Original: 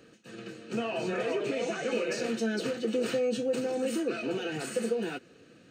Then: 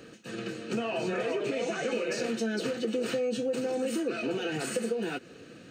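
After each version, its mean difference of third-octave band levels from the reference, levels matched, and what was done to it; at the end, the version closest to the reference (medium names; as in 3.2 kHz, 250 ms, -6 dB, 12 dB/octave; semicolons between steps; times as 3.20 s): 2.0 dB: compression 2.5:1, threshold -38 dBFS, peak gain reduction 9 dB; trim +7 dB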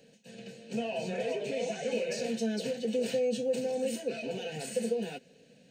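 3.0 dB: static phaser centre 330 Hz, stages 6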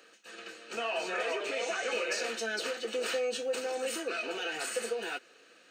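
7.5 dB: high-pass 710 Hz 12 dB/octave; trim +3.5 dB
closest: first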